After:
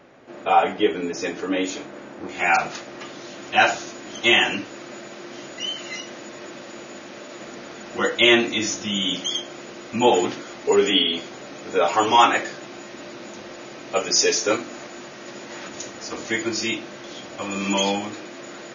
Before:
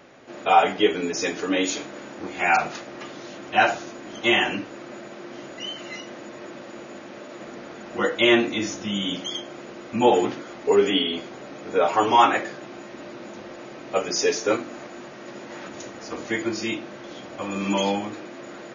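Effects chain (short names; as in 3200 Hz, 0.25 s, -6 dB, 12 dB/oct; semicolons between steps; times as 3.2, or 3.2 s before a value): high shelf 2800 Hz -6 dB, from 2.29 s +4.5 dB, from 3.38 s +9.5 dB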